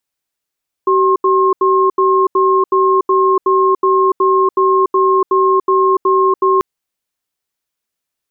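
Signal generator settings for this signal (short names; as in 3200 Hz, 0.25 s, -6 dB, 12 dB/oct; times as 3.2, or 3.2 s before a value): cadence 381 Hz, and 1070 Hz, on 0.29 s, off 0.08 s, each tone -11.5 dBFS 5.74 s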